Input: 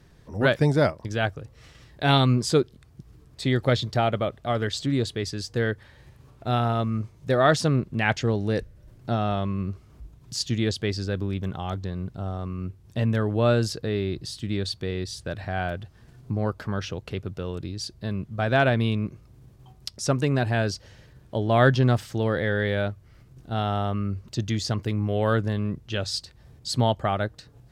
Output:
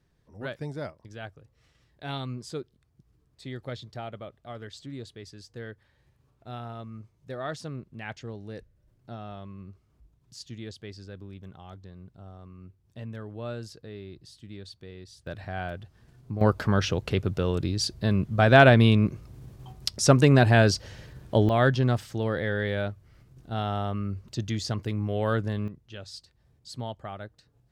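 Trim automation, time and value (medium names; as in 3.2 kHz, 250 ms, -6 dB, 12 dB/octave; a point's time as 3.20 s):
-15 dB
from 15.27 s -5.5 dB
from 16.41 s +5.5 dB
from 21.49 s -3.5 dB
from 25.68 s -13.5 dB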